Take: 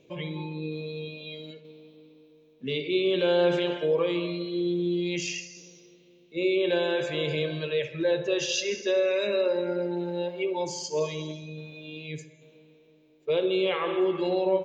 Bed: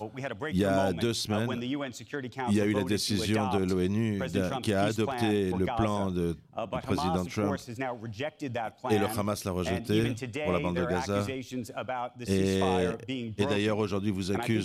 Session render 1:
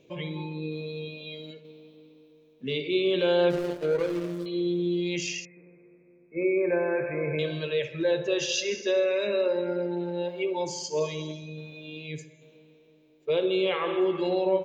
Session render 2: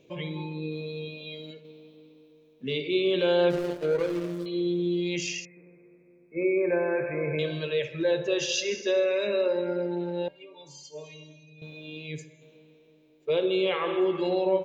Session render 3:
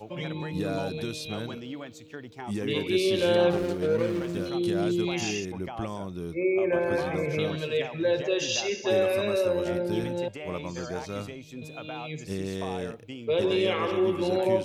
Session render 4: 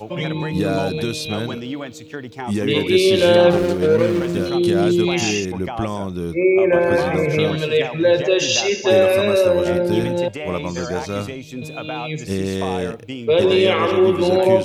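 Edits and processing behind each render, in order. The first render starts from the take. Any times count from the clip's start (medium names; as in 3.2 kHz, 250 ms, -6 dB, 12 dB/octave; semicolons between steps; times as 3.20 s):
3.50–4.46 s: median filter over 41 samples; 5.45–7.39 s: brick-wall FIR low-pass 2.6 kHz; 9.04–10.25 s: distance through air 91 m
10.28–11.62 s: inharmonic resonator 140 Hz, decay 0.33 s, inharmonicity 0.008
add bed -6 dB
trim +10 dB; peak limiter -2 dBFS, peak gain reduction 2 dB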